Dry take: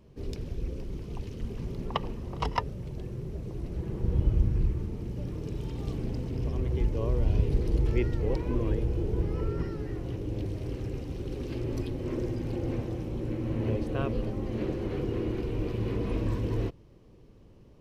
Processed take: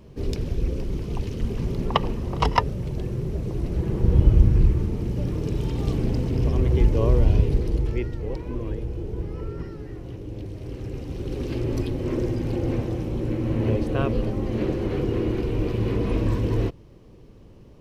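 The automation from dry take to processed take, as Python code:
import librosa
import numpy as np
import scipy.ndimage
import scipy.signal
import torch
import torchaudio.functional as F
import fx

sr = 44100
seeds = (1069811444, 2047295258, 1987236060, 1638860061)

y = fx.gain(x, sr, db=fx.line((7.14, 9.0), (8.13, -1.5), (10.5, -1.5), (11.41, 6.5)))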